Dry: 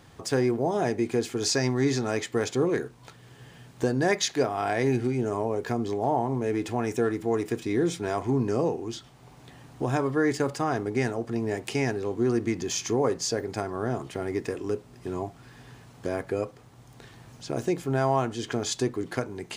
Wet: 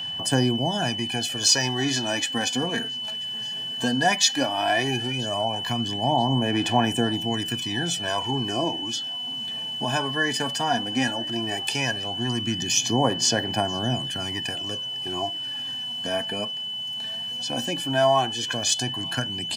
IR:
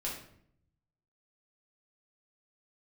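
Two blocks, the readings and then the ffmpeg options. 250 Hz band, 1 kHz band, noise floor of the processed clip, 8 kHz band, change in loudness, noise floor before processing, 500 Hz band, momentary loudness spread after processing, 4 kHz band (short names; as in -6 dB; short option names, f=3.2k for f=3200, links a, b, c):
+0.5 dB, +5.0 dB, -32 dBFS, +8.5 dB, +3.5 dB, -52 dBFS, -2.0 dB, 8 LU, +16.0 dB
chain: -filter_complex "[0:a]highpass=140,asplit=2[a][b];[b]aecho=0:1:985|1970|2955:0.0631|0.0271|0.0117[c];[a][c]amix=inputs=2:normalize=0,aphaser=in_gain=1:out_gain=1:delay=4.7:decay=0.54:speed=0.15:type=sinusoidal,aecho=1:1:1.2:0.75,aeval=exprs='val(0)+0.0224*sin(2*PI*3000*n/s)':c=same,acrossover=split=450|2500[d][e][f];[f]acontrast=39[g];[d][e][g]amix=inputs=3:normalize=0"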